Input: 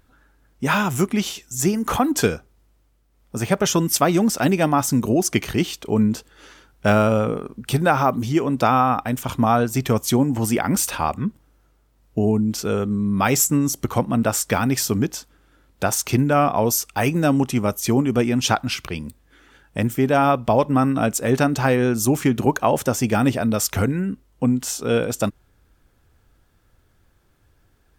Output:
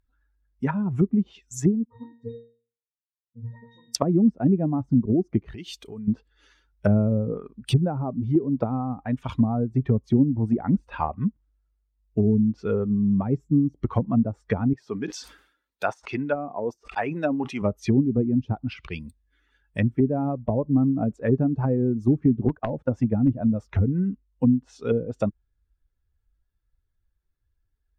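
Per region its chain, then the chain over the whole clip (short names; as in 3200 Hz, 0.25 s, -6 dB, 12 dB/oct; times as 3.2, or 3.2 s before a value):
1.85–3.95 dispersion highs, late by 52 ms, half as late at 1000 Hz + sample leveller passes 1 + octave resonator A#, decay 0.6 s
5.38–6.08 high shelf 11000 Hz +8 dB + compressor, threshold -28 dBFS
14.73–17.62 HPF 480 Hz 6 dB/oct + sustainer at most 65 dB/s
22.48–23.59 notch 410 Hz, Q 6.2 + gate -29 dBFS, range -15 dB + wrapped overs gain 8 dB
whole clip: per-bin expansion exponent 1.5; treble ducked by the level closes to 320 Hz, closed at -19.5 dBFS; gain +3 dB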